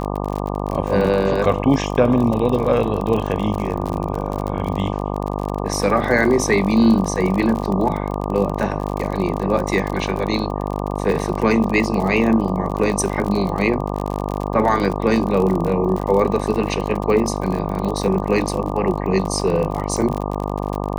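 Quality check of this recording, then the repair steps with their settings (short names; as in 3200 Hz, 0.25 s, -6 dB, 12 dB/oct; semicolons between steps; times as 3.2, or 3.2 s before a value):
buzz 50 Hz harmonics 24 -24 dBFS
crackle 45/s -23 dBFS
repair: de-click; de-hum 50 Hz, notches 24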